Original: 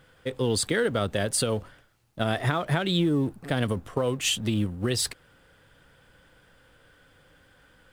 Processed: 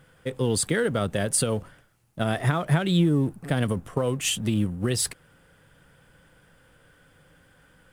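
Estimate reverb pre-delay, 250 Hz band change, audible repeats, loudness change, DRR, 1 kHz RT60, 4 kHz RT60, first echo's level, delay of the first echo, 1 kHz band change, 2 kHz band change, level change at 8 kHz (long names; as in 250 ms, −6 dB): no reverb audible, +2.0 dB, no echo audible, +1.5 dB, no reverb audible, no reverb audible, no reverb audible, no echo audible, no echo audible, 0.0 dB, −0.5 dB, +3.0 dB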